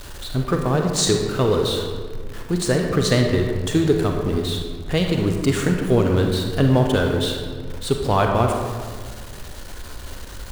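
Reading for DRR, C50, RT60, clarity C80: 2.0 dB, 3.5 dB, 1.7 s, 5.0 dB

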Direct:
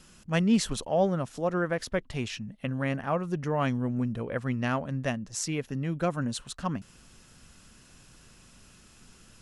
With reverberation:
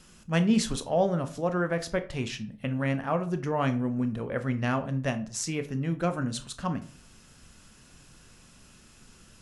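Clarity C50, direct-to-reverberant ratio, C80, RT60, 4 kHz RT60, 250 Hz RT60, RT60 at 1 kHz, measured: 15.0 dB, 8.5 dB, 20.0 dB, 0.40 s, 0.30 s, 0.50 s, 0.40 s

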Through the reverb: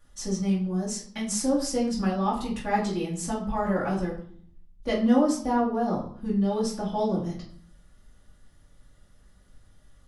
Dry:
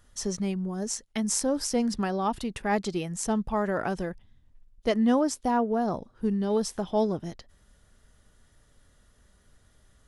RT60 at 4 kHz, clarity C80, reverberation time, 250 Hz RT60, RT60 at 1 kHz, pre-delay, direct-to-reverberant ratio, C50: 0.45 s, 11.0 dB, 0.55 s, 0.80 s, 0.55 s, 4 ms, -7.5 dB, 7.0 dB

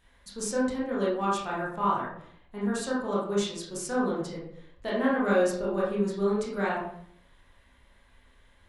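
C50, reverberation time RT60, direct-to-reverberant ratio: 1.5 dB, 0.65 s, -6.5 dB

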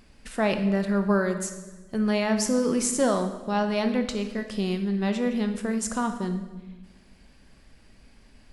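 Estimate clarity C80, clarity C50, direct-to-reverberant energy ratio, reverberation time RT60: 10.5 dB, 9.0 dB, 6.5 dB, 1.2 s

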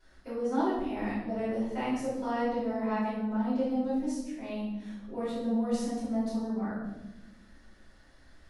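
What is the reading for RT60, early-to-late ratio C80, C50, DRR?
1.0 s, 3.5 dB, 0.0 dB, -11.5 dB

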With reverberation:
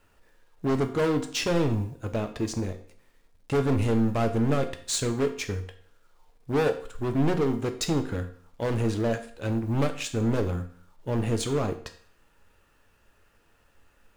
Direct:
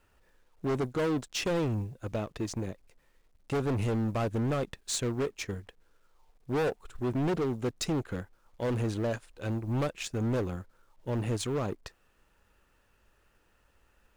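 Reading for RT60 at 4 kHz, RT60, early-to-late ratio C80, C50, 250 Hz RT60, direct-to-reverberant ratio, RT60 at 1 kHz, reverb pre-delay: 0.50 s, 0.50 s, 15.0 dB, 12.0 dB, 0.50 s, 6.5 dB, 0.50 s, 4 ms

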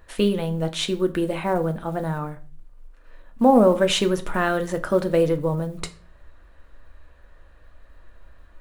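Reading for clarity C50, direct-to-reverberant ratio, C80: 17.0 dB, 7.0 dB, 21.5 dB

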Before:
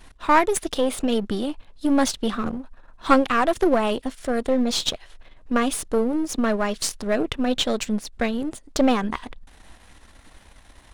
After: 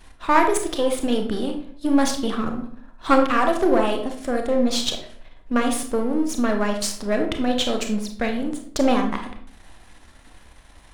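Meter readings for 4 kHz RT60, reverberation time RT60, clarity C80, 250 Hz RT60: 0.40 s, 0.60 s, 11.5 dB, 0.75 s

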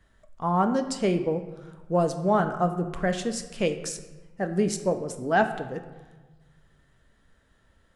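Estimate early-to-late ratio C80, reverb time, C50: 12.0 dB, 1.3 s, 10.5 dB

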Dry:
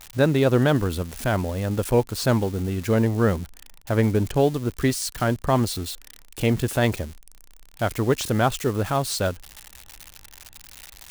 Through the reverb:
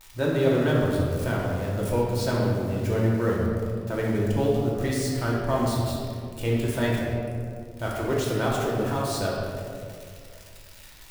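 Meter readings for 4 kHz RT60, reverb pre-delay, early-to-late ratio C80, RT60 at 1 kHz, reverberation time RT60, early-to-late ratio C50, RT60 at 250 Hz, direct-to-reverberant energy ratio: 1.2 s, 3 ms, 1.5 dB, 1.9 s, 2.2 s, -0.5 dB, 2.5 s, -4.5 dB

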